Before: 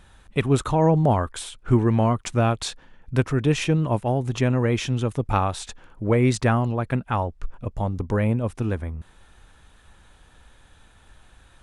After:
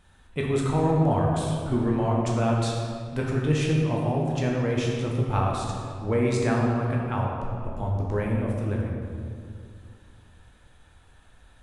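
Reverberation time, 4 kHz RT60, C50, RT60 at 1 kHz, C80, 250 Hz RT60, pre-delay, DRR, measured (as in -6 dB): 2.2 s, 1.4 s, 0.5 dB, 2.1 s, 2.0 dB, 2.8 s, 11 ms, -2.5 dB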